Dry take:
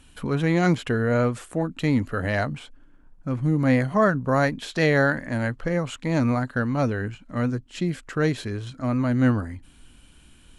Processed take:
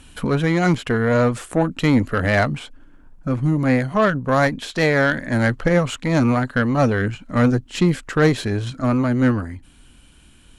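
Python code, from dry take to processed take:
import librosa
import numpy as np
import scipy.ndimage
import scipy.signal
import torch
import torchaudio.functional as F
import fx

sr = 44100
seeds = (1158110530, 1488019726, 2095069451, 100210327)

y = fx.rider(x, sr, range_db=4, speed_s=0.5)
y = fx.cheby_harmonics(y, sr, harmonics=(6,), levels_db=(-22,), full_scale_db=-9.0)
y = y * librosa.db_to_amplitude(5.0)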